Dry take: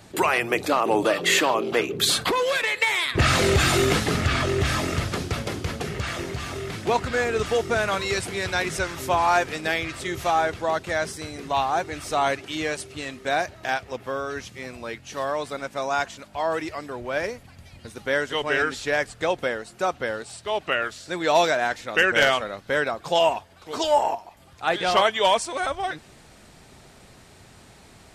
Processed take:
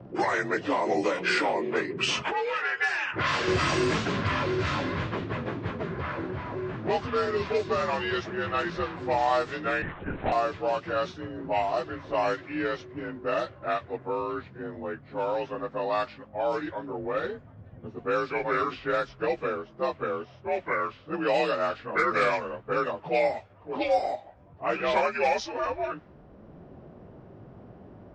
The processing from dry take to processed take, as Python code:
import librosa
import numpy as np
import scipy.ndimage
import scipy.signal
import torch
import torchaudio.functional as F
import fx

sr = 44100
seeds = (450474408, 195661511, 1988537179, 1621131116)

y = fx.partial_stretch(x, sr, pct=88)
y = fx.low_shelf(y, sr, hz=420.0, db=-11.0, at=(2.22, 3.48))
y = fx.env_lowpass(y, sr, base_hz=550.0, full_db=-18.5)
y = fx.lpc_vocoder(y, sr, seeds[0], excitation='whisper', order=8, at=(9.82, 10.32))
y = fx.band_squash(y, sr, depth_pct=40)
y = y * 10.0 ** (-2.0 / 20.0)